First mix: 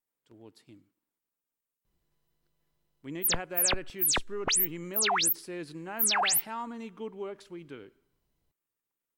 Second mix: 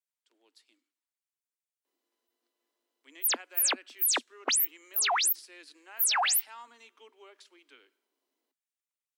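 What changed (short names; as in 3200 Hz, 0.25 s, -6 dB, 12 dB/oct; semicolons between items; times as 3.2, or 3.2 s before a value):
speech: add band-pass 4900 Hz, Q 0.62; master: add steep high-pass 240 Hz 96 dB/oct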